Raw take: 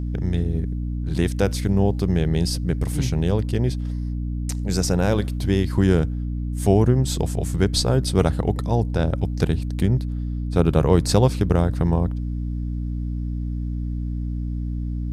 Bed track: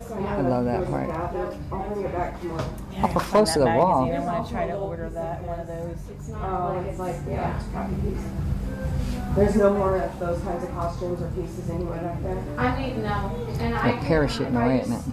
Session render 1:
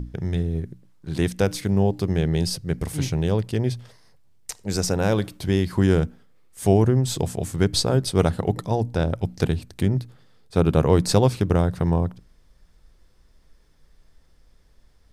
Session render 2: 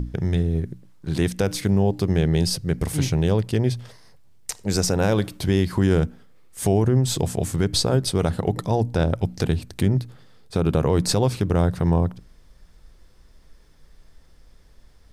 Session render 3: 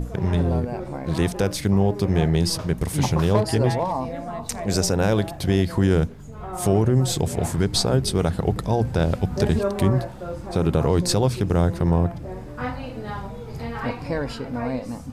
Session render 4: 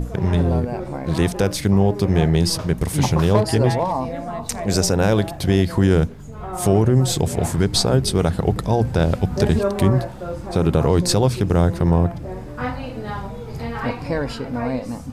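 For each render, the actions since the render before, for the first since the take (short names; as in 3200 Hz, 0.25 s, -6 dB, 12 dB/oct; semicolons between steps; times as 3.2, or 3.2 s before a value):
notches 60/120/180/240/300 Hz
in parallel at -2.5 dB: compressor, threshold -27 dBFS, peak gain reduction 14.5 dB; on the sum: limiter -9.5 dBFS, peak gain reduction 6.5 dB
add bed track -5.5 dB
gain +3 dB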